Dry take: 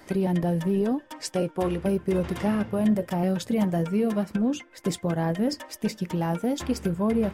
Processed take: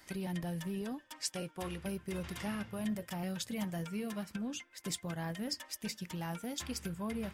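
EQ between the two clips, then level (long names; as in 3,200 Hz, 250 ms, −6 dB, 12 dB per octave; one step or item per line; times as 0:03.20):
guitar amp tone stack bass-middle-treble 5-5-5
+3.5 dB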